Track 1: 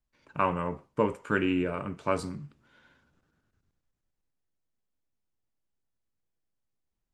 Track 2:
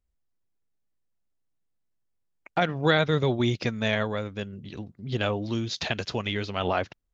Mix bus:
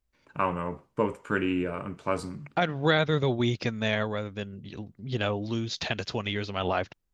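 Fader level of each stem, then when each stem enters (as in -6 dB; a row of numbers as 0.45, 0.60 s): -0.5, -1.5 dB; 0.00, 0.00 s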